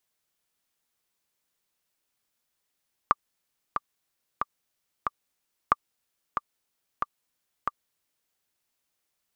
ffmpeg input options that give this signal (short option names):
-f lavfi -i "aevalsrc='pow(10,(-5.5-7.5*gte(mod(t,4*60/92),60/92))/20)*sin(2*PI*1180*mod(t,60/92))*exp(-6.91*mod(t,60/92)/0.03)':d=5.21:s=44100"